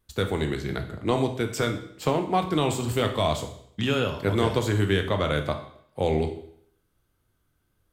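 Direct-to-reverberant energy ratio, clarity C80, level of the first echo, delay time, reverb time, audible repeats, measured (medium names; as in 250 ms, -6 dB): 5.0 dB, 13.0 dB, no echo, no echo, 0.65 s, no echo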